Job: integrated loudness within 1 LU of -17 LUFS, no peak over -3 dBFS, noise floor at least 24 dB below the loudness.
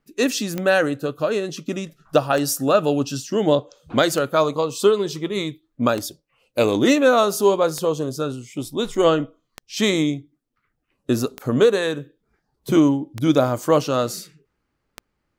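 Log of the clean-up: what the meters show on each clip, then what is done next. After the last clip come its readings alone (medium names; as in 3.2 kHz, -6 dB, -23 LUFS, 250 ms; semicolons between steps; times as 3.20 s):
clicks found 9; loudness -20.5 LUFS; peak level -3.5 dBFS; loudness target -17.0 LUFS
-> de-click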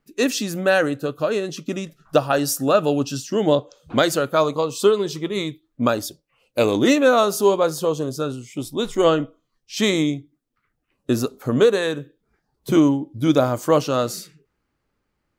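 clicks found 0; loudness -20.5 LUFS; peak level -3.5 dBFS; loudness target -17.0 LUFS
-> trim +3.5 dB; peak limiter -3 dBFS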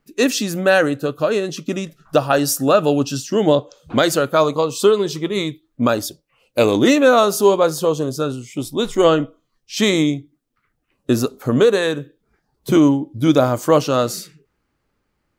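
loudness -17.5 LUFS; peak level -3.0 dBFS; noise floor -71 dBFS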